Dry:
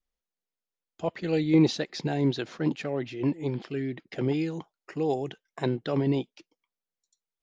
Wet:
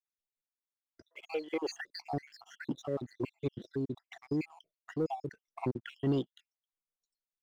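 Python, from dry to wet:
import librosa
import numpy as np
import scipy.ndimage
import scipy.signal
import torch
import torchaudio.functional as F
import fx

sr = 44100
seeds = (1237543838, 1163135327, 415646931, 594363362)

y = fx.spec_dropout(x, sr, seeds[0], share_pct=69)
y = fx.highpass(y, sr, hz=460.0, slope=24, at=(1.07, 1.74))
y = fx.leveller(y, sr, passes=1)
y = y * librosa.db_to_amplitude(-5.5)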